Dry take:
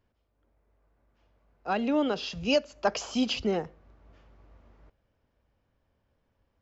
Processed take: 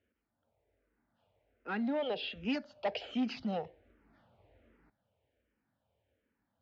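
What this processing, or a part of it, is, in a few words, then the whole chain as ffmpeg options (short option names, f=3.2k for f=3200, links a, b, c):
barber-pole phaser into a guitar amplifier: -filter_complex "[0:a]asplit=2[a][b];[b]afreqshift=-1.3[c];[a][c]amix=inputs=2:normalize=1,asoftclip=type=tanh:threshold=-26dB,highpass=110,equalizer=f=150:t=q:w=4:g=-7,equalizer=f=370:t=q:w=4:g=-3,equalizer=f=1.1k:t=q:w=4:g=-9,lowpass=f=3.9k:w=0.5412,lowpass=f=3.9k:w=1.3066"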